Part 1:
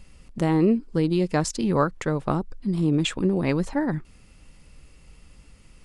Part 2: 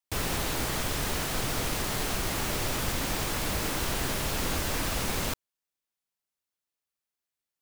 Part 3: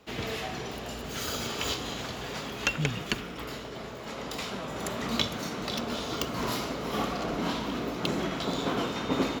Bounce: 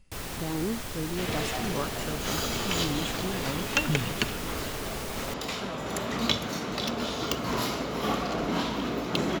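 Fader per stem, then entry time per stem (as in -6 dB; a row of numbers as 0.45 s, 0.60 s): -11.5 dB, -6.5 dB, +2.0 dB; 0.00 s, 0.00 s, 1.10 s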